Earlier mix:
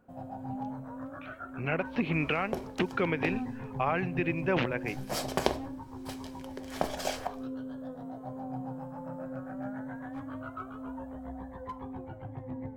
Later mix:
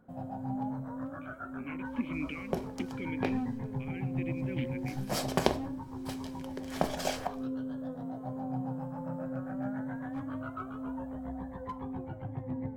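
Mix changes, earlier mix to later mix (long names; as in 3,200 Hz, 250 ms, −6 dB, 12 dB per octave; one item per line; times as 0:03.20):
speech: add formant filter i
master: add parametric band 170 Hz +6 dB 1.1 octaves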